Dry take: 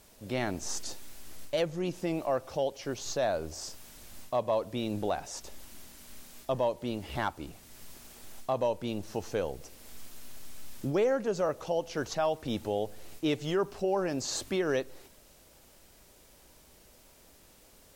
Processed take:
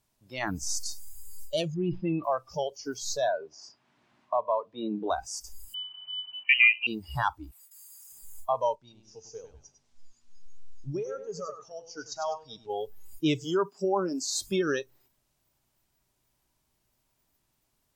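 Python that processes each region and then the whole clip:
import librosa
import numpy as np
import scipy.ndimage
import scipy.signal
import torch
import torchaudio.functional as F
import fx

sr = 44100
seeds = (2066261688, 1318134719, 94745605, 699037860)

y = fx.chain(x, sr, fx.lowpass(hz=3500.0, slope=24),
    fx.sustainer(db_per_s=130.0), at=(1.74, 2.24))
y = fx.chain(y, sr, fx.bandpass_edges(low_hz=200.0, high_hz=3100.0),
    fx.band_squash(depth_pct=40), at=(3.28, 5.1))
y = fx.chain(y, sr, fx.freq_invert(carrier_hz=3000),
    fx.peak_eq(hz=860.0, db=12.0, octaves=2.2), at=(5.74, 6.87))
y = fx.chain(y, sr, fx.gate_hold(open_db=-41.0, close_db=-46.0, hold_ms=71.0, range_db=-21, attack_ms=1.4, release_ms=100.0),
    fx.highpass(hz=870.0, slope=24),
    fx.env_flatten(amount_pct=50), at=(7.51, 8.12))
y = fx.chain(y, sr, fx.ladder_lowpass(hz=7900.0, resonance_pct=30),
    fx.echo_feedback(ms=100, feedback_pct=46, wet_db=-5.5), at=(8.75, 12.7))
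y = fx.chain(y, sr, fx.steep_highpass(hz=180.0, slope=36),
    fx.dynamic_eq(hz=2900.0, q=0.76, threshold_db=-46.0, ratio=4.0, max_db=-3), at=(13.44, 14.36))
y = fx.noise_reduce_blind(y, sr, reduce_db=22)
y = fx.graphic_eq_31(y, sr, hz=(125, 500, 1000), db=(10, -11, 4))
y = F.gain(torch.from_numpy(y), 4.5).numpy()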